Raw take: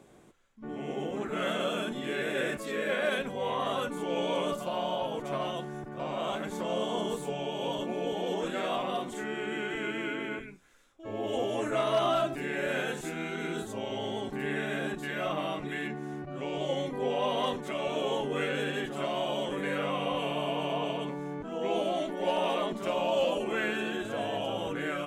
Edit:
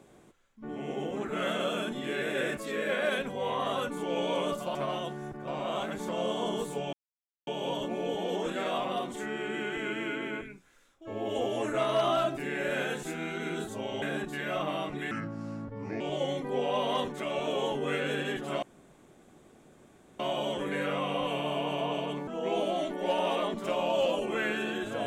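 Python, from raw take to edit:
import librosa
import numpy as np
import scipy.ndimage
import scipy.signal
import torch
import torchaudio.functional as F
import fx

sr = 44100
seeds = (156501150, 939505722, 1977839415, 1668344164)

y = fx.edit(x, sr, fx.cut(start_s=4.75, length_s=0.52),
    fx.insert_silence(at_s=7.45, length_s=0.54),
    fx.cut(start_s=14.0, length_s=0.72),
    fx.speed_span(start_s=15.81, length_s=0.68, speed=0.76),
    fx.insert_room_tone(at_s=19.11, length_s=1.57),
    fx.cut(start_s=21.19, length_s=0.27), tone=tone)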